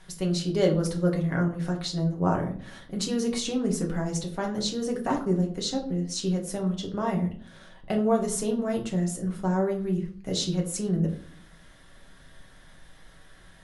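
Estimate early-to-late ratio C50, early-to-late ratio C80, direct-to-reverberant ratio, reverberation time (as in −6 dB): 10.0 dB, 15.0 dB, 0.0 dB, 0.50 s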